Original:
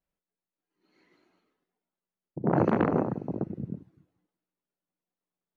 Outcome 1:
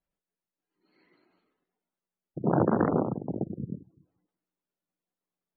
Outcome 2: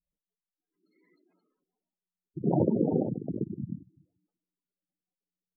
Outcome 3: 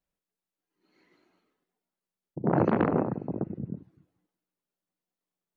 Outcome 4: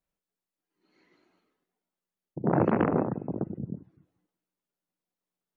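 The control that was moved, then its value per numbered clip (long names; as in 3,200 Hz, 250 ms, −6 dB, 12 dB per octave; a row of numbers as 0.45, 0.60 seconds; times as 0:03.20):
gate on every frequency bin, under each frame's peak: −25, −10, −55, −45 decibels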